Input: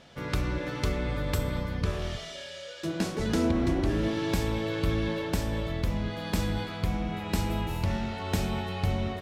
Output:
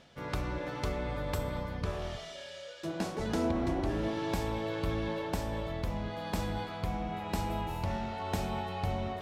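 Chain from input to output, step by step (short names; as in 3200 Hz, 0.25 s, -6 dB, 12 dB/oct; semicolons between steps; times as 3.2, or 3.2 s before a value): dynamic EQ 790 Hz, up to +8 dB, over -49 dBFS, Q 1.2; reverse; upward compressor, threshold -35 dBFS; reverse; gain -6.5 dB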